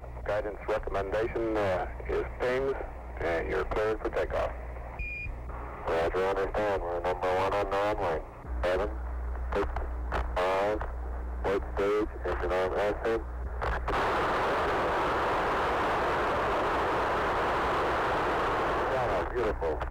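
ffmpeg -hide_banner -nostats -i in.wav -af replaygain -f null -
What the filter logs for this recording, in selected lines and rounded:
track_gain = +12.3 dB
track_peak = 0.037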